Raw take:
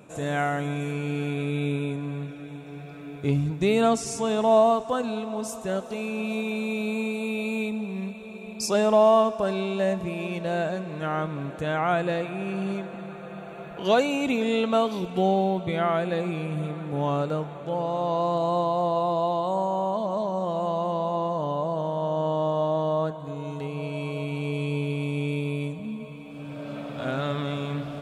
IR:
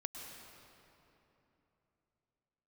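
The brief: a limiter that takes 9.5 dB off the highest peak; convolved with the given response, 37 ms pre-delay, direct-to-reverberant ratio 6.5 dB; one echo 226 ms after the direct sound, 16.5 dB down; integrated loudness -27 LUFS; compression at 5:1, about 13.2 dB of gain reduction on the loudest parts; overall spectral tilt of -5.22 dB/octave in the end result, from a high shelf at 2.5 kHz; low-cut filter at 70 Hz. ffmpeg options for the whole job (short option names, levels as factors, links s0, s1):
-filter_complex "[0:a]highpass=70,highshelf=f=2500:g=8,acompressor=threshold=0.0355:ratio=5,alimiter=level_in=1.5:limit=0.0631:level=0:latency=1,volume=0.668,aecho=1:1:226:0.15,asplit=2[s0][s1];[1:a]atrim=start_sample=2205,adelay=37[s2];[s1][s2]afir=irnorm=-1:irlink=0,volume=0.562[s3];[s0][s3]amix=inputs=2:normalize=0,volume=2.51"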